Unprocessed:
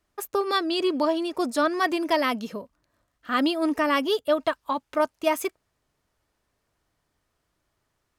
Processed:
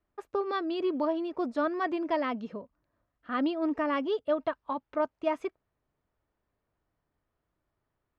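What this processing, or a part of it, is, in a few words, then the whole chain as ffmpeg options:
phone in a pocket: -af "lowpass=4k,highshelf=f=2.2k:g=-11.5,volume=-4.5dB"

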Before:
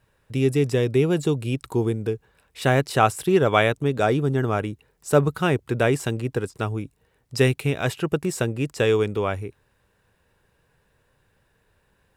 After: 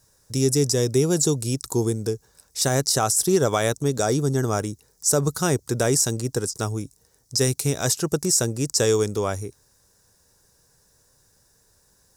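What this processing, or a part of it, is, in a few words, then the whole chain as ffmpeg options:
over-bright horn tweeter: -af "highshelf=f=4k:t=q:w=3:g=13.5,alimiter=limit=-9dB:level=0:latency=1:release=88"

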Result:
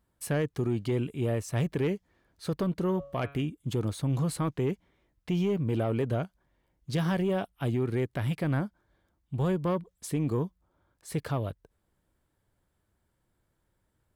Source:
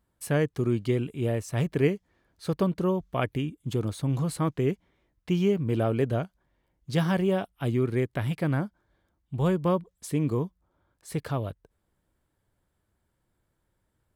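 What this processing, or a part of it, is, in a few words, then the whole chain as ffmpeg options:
soft clipper into limiter: -filter_complex "[0:a]asoftclip=type=tanh:threshold=-17dB,alimiter=limit=-21.5dB:level=0:latency=1,asettb=1/sr,asplit=3[a][b][c];[a]atrim=end=2.744[d];[b]atrim=start=2.74:end=3.42,asetpts=PTS-STARTPTS,afade=t=in:d=0.004:c=qsin,afade=t=out:st=0.676:d=0.004:c=qsin,bandreject=f=140.1:t=h:w=4,bandreject=f=280.2:t=h:w=4,bandreject=f=420.3:t=h:w=4,bandreject=f=560.4:t=h:w=4,bandreject=f=700.5:t=h:w=4,bandreject=f=840.6:t=h:w=4,bandreject=f=980.7:t=h:w=4,bandreject=f=1.1208k:t=h:w=4,bandreject=f=1.2609k:t=h:w=4,bandreject=f=1.401k:t=h:w=4,bandreject=f=1.5411k:t=h:w=4,bandreject=f=1.6812k:t=h:w=4,bandreject=f=1.8213k:t=h:w=4,bandreject=f=1.9614k:t=h:w=4,bandreject=f=2.1015k:t=h:w=4,bandreject=f=2.2416k:t=h:w=4,bandreject=f=2.3817k:t=h:w=4,bandreject=f=2.5218k:t=h:w=4,bandreject=f=2.6619k:t=h:w=4,bandreject=f=2.802k:t=h:w=4,bandreject=f=2.9421k:t=h:w=4,bandreject=f=3.0822k:t=h:w=4,bandreject=f=3.2223k:t=h:w=4,bandreject=f=3.3624k:t=h:w=4,bandreject=f=3.5025k:t=h:w=4,bandreject=f=3.6426k:t=h:w=4,bandreject=f=3.7827k:t=h:w=4,bandreject=f=3.9228k:t=h:w=4,bandreject=f=4.0629k:t=h:w=4[e];[c]atrim=start=3.416[f];[d][e]acrossfade=d=0.004:c1=hsin:c2=qsin[g];[g][f]acrossfade=d=0.004:c1=qsin:c2=hsin"

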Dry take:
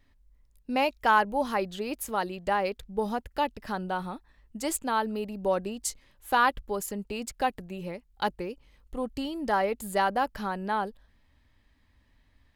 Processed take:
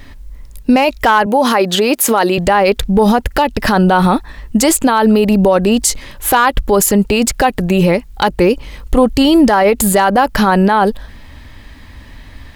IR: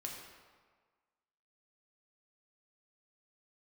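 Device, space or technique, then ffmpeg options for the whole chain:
loud club master: -filter_complex "[0:a]acompressor=threshold=-31dB:ratio=2,asoftclip=type=hard:threshold=-21.5dB,alimiter=level_in=31dB:limit=-1dB:release=50:level=0:latency=1,asettb=1/sr,asplit=3[a][b][c];[a]atrim=end=1.264[d];[b]atrim=start=1.26:end=2.38,asetpts=PTS-STARTPTS,afade=t=in:d=0.004:c=qsin,afade=t=out:st=1.116:d=0.004:c=qsin,highpass=230[e];[c]atrim=start=2.376[f];[d][e]acrossfade=d=0.004:c1=hsin:c2=qsin[g];[g][f]acrossfade=d=0.004:c1=qsin:c2=hsin,volume=-2dB"

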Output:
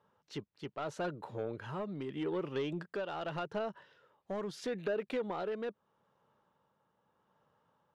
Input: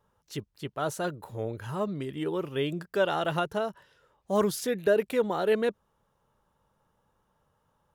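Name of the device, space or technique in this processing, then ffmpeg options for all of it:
AM radio: -af "highpass=150,lowpass=4.1k,acompressor=threshold=-29dB:ratio=6,asoftclip=type=tanh:threshold=-27dB,tremolo=f=0.8:d=0.36"

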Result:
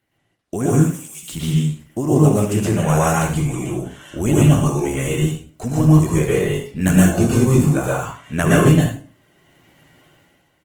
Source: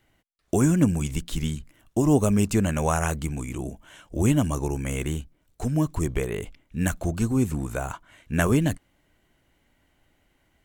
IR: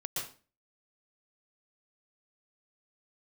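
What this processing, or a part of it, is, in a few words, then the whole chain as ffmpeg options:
far-field microphone of a smart speaker: -filter_complex "[0:a]asettb=1/sr,asplit=3[a][b][c];[a]atrim=end=0.724[d];[b]atrim=start=0.72:end=1.23,asetpts=PTS-STARTPTS,afade=t=in:d=0.004:c=qsin,afade=t=out:st=0.506:d=0.004:c=qsin,aderivative[e];[c]atrim=start=1.226[f];[d][e]acrossfade=d=0.004:c1=hsin:c2=qsin[g];[g][f]acrossfade=d=0.004:c1=qsin:c2=hsin,asplit=3[h][i][j];[h]afade=t=out:st=6.19:d=0.02[k];[i]asplit=2[l][m];[m]adelay=21,volume=-4.5dB[n];[l][n]amix=inputs=2:normalize=0,afade=t=in:st=6.19:d=0.02,afade=t=out:st=7.81:d=0.02[o];[j]afade=t=in:st=7.81:d=0.02[p];[k][o][p]amix=inputs=3:normalize=0,aecho=1:1:54|71:0.2|0.335[q];[1:a]atrim=start_sample=2205[r];[q][r]afir=irnorm=-1:irlink=0,highpass=94,dynaudnorm=f=140:g=9:m=14dB,volume=-1dB" -ar 48000 -c:a libopus -b:a 20k

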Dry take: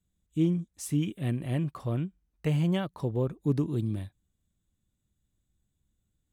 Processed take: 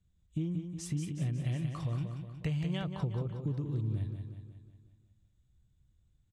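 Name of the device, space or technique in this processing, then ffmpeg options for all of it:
jukebox: -filter_complex "[0:a]lowpass=6.4k,lowshelf=f=170:t=q:w=1.5:g=6.5,acompressor=threshold=-32dB:ratio=6,aecho=1:1:182|364|546|728|910|1092|1274:0.473|0.251|0.133|0.0704|0.0373|0.0198|0.0105,asplit=3[a][b][c];[a]afade=t=out:st=1.44:d=0.02[d];[b]adynamicequalizer=threshold=0.00112:dfrequency=1800:dqfactor=0.7:tfrequency=1800:tqfactor=0.7:attack=5:release=100:ratio=0.375:range=3.5:mode=boostabove:tftype=highshelf,afade=t=in:st=1.44:d=0.02,afade=t=out:st=2.82:d=0.02[e];[c]afade=t=in:st=2.82:d=0.02[f];[d][e][f]amix=inputs=3:normalize=0"

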